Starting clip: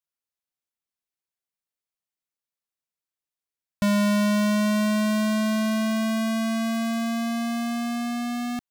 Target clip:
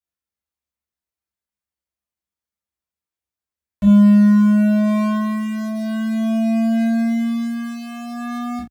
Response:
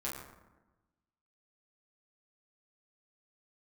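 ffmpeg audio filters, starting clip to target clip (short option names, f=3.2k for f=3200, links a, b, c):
-filter_complex "[0:a]equalizer=f=63:t=o:w=2:g=8.5,acrossover=split=420[a][b];[b]asoftclip=type=tanh:threshold=-24.5dB[c];[a][c]amix=inputs=2:normalize=0[d];[1:a]atrim=start_sample=2205,atrim=end_sample=3969[e];[d][e]afir=irnorm=-1:irlink=0"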